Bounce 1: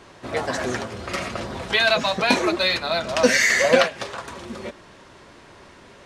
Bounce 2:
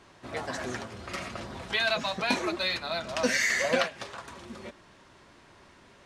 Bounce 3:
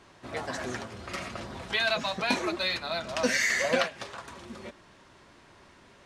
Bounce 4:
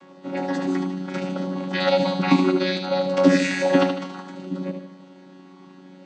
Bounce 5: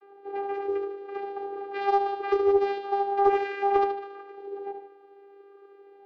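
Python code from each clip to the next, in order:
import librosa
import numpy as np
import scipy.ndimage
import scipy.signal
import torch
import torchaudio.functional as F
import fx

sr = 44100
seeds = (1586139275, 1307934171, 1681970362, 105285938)

y1 = fx.peak_eq(x, sr, hz=480.0, db=-3.5, octaves=0.7)
y1 = F.gain(torch.from_numpy(y1), -8.0).numpy()
y2 = y1
y3 = fx.chord_vocoder(y2, sr, chord='bare fifth', root=54)
y3 = fx.echo_feedback(y3, sr, ms=76, feedback_pct=48, wet_db=-6.5)
y3 = F.gain(torch.from_numpy(y3), 8.0).numpy()
y4 = fx.vocoder(y3, sr, bands=8, carrier='saw', carrier_hz=399.0)
y4 = fx.air_absorb(y4, sr, metres=260.0)
y4 = fx.doppler_dist(y4, sr, depth_ms=0.22)
y4 = F.gain(torch.from_numpy(y4), -3.5).numpy()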